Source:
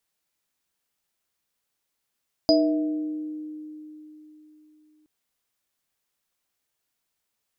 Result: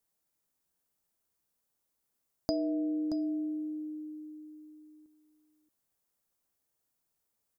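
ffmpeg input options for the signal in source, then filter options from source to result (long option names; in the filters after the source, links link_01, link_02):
-f lavfi -i "aevalsrc='0.133*pow(10,-3*t/3.71)*sin(2*PI*306*t)+0.0335*pow(10,-3*t/1.92)*sin(2*PI*476*t)+0.168*pow(10,-3*t/0.97)*sin(2*PI*648*t)+0.119*pow(10,-3*t/0.25)*sin(2*PI*4940*t)':duration=2.57:sample_rate=44100"
-filter_complex "[0:a]acompressor=threshold=-30dB:ratio=3,equalizer=frequency=2800:width_type=o:width=2.3:gain=-10,asplit=2[link_01][link_02];[link_02]aecho=0:1:627:0.266[link_03];[link_01][link_03]amix=inputs=2:normalize=0"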